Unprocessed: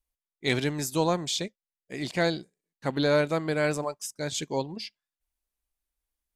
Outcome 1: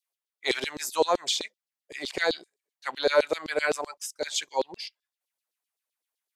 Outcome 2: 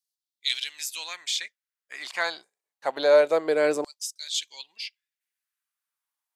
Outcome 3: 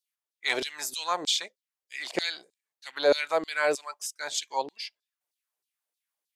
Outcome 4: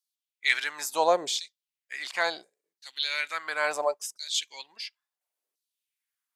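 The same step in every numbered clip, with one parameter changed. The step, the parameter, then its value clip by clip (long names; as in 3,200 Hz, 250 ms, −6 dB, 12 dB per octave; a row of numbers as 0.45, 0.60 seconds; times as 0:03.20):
auto-filter high-pass, speed: 7.8, 0.26, 3.2, 0.72 Hertz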